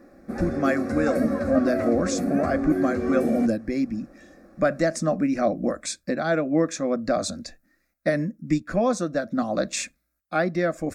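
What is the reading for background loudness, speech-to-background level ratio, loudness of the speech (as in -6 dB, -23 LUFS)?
-27.5 LUFS, 2.0 dB, -25.5 LUFS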